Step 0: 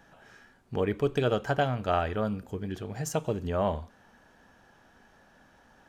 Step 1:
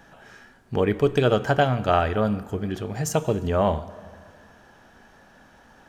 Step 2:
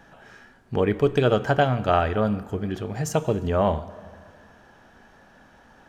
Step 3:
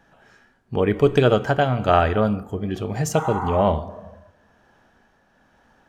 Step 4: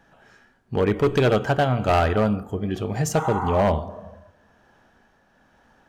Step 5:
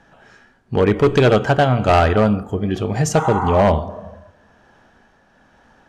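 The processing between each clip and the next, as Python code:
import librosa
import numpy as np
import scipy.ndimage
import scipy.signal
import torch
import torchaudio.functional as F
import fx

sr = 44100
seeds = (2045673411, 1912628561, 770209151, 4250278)

y1 = fx.rev_plate(x, sr, seeds[0], rt60_s=2.2, hf_ratio=0.65, predelay_ms=0, drr_db=16.0)
y1 = y1 * librosa.db_to_amplitude(6.5)
y2 = fx.high_shelf(y1, sr, hz=5200.0, db=-5.0)
y3 = fx.tremolo_shape(y2, sr, shape='triangle', hz=1.1, depth_pct=40)
y3 = fx.noise_reduce_blind(y3, sr, reduce_db=9)
y3 = fx.spec_repair(y3, sr, seeds[1], start_s=3.2, length_s=0.38, low_hz=740.0, high_hz=2200.0, source='both')
y3 = y3 * librosa.db_to_amplitude(4.5)
y4 = np.clip(y3, -10.0 ** (-13.5 / 20.0), 10.0 ** (-13.5 / 20.0))
y5 = scipy.signal.sosfilt(scipy.signal.butter(2, 9600.0, 'lowpass', fs=sr, output='sos'), y4)
y5 = y5 * librosa.db_to_amplitude(5.5)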